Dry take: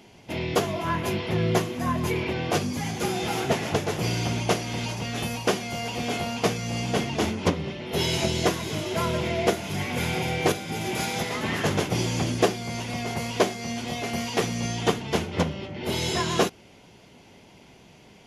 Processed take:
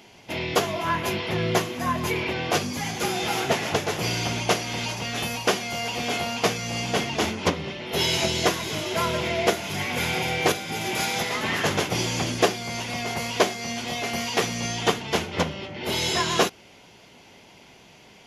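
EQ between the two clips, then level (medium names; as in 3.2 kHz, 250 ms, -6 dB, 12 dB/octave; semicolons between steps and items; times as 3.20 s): bass shelf 500 Hz -8 dB; peaking EQ 9 kHz -4.5 dB 0.39 oct; +4.5 dB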